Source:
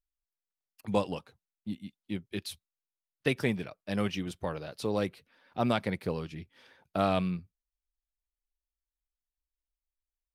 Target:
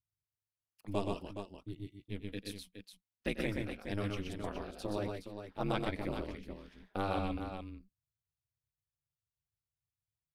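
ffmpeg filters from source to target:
ffmpeg -i in.wav -filter_complex "[0:a]equalizer=frequency=88:width_type=o:width=0.84:gain=5.5,aeval=exprs='val(0)*sin(2*PI*100*n/s)':channel_layout=same,asplit=2[link_01][link_02];[link_02]aecho=0:1:94|124|141|418:0.15|0.668|0.133|0.376[link_03];[link_01][link_03]amix=inputs=2:normalize=0,volume=-5dB" out.wav

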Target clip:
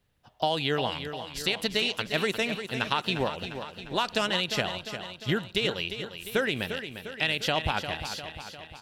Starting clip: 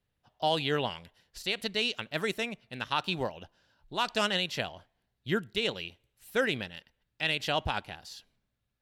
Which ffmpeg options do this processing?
ffmpeg -i in.wav -filter_complex "[0:a]acompressor=threshold=-31dB:ratio=6,asplit=2[link_01][link_02];[link_02]aecho=0:1:351|702|1053|1404|1755|2106|2457:0.335|0.191|0.109|0.062|0.0354|0.0202|0.0115[link_03];[link_01][link_03]amix=inputs=2:normalize=0,volume=8dB" out.wav

